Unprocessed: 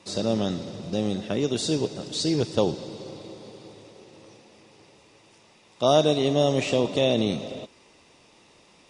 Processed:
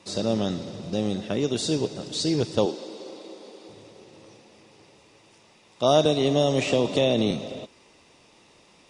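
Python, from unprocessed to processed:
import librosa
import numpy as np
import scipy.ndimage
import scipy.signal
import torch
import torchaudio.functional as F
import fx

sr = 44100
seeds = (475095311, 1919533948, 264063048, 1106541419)

y = fx.highpass(x, sr, hz=250.0, slope=24, at=(2.66, 3.69))
y = fx.band_squash(y, sr, depth_pct=70, at=(6.05, 7.31))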